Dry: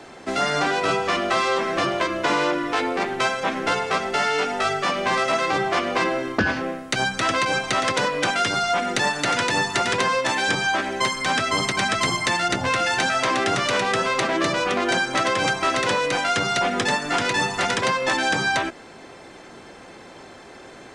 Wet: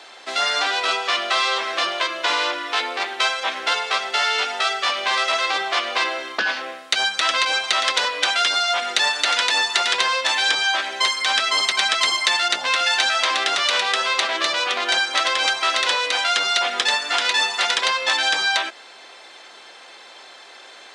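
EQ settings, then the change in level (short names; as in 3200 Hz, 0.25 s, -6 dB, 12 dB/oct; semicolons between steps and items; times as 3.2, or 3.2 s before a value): HPF 680 Hz 12 dB/oct; bell 3700 Hz +9.5 dB 1 oct; 0.0 dB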